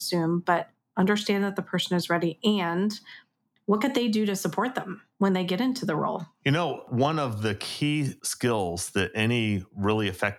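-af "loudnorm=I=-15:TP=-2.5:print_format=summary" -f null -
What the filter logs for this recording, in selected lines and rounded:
Input Integrated:    -26.8 LUFS
Input True Peak:      -9.4 dBTP
Input LRA:             1.2 LU
Input Threshold:     -37.0 LUFS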